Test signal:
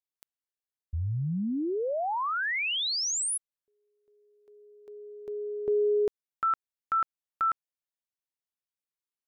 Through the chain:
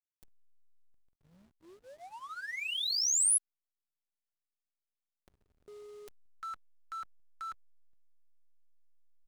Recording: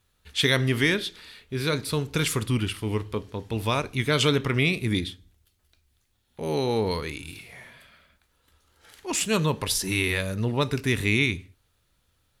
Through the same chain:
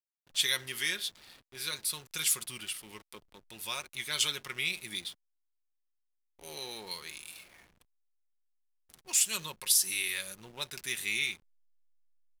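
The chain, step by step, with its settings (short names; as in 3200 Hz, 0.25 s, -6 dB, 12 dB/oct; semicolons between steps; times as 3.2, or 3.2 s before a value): gate -52 dBFS, range -11 dB; pre-emphasis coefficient 0.97; comb 5.5 ms, depth 48%; band noise 3100–10000 Hz -66 dBFS; backlash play -45 dBFS; gain +1.5 dB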